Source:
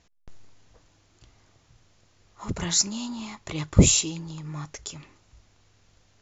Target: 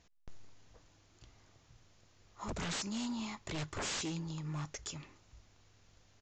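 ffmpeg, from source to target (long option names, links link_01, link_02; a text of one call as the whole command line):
ffmpeg -i in.wav -af "alimiter=limit=-13dB:level=0:latency=1:release=177,aresample=16000,aeval=exprs='0.0355*(abs(mod(val(0)/0.0355+3,4)-2)-1)':channel_layout=same,aresample=44100,volume=-4dB" out.wav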